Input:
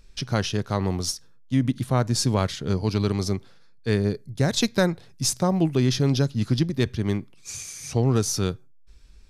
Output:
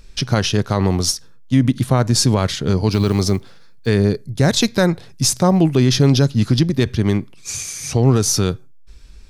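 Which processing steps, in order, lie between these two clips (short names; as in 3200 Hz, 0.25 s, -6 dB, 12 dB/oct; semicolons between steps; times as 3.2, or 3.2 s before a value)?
2.92–3.88 block floating point 7-bit; limiter -14 dBFS, peak gain reduction 5.5 dB; gain +9 dB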